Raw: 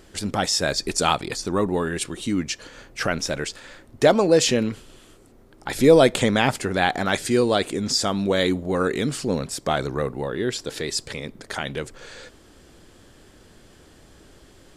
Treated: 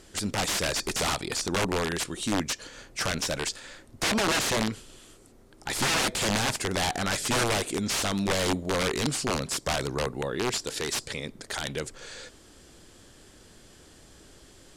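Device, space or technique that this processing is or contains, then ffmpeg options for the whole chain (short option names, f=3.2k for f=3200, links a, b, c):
overflowing digital effects unit: -af "aemphasis=mode=production:type=50fm,aeval=exprs='(mod(6.31*val(0)+1,2)-1)/6.31':c=same,lowpass=8.1k,volume=-3dB"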